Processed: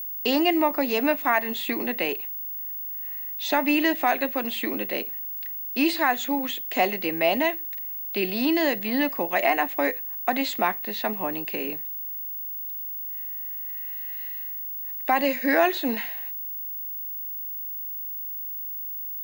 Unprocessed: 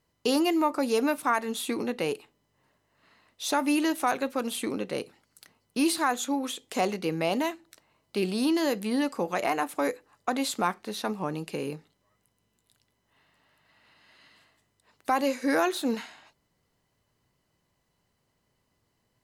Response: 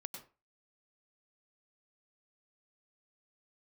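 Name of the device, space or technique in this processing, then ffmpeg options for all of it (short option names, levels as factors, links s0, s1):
old television with a line whistle: -af "highpass=f=210:w=0.5412,highpass=f=210:w=1.3066,equalizer=f=470:t=q:w=4:g=-5,equalizer=f=660:t=q:w=4:g=6,equalizer=f=1300:t=q:w=4:g=-6,equalizer=f=1900:t=q:w=4:g=10,equalizer=f=2700:t=q:w=4:g=5,equalizer=f=5700:t=q:w=4:g=-7,lowpass=f=6500:w=0.5412,lowpass=f=6500:w=1.3066,aeval=exprs='val(0)+0.0224*sin(2*PI*15625*n/s)':c=same,volume=1.33"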